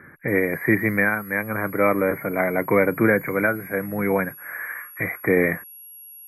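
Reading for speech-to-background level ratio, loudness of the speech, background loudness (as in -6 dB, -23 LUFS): 17.5 dB, -22.5 LUFS, -40.0 LUFS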